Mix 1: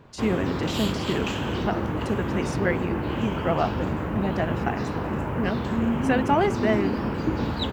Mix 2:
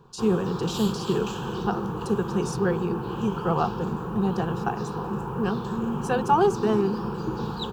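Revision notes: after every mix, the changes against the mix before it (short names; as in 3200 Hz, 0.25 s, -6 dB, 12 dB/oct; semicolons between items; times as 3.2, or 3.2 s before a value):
speech +4.0 dB; master: add fixed phaser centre 410 Hz, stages 8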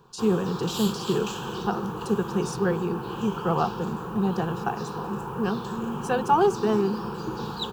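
background: add tilt +1.5 dB/oct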